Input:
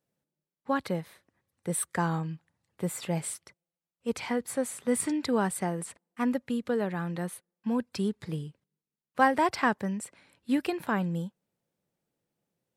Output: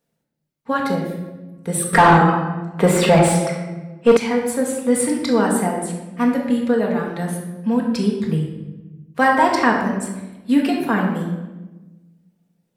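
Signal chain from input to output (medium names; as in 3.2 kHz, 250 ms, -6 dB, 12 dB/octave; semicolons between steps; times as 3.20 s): reverb removal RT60 0.88 s; simulated room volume 670 m³, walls mixed, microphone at 1.7 m; 1.93–4.17 s: overdrive pedal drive 26 dB, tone 1.5 kHz, clips at -6.5 dBFS; trim +6.5 dB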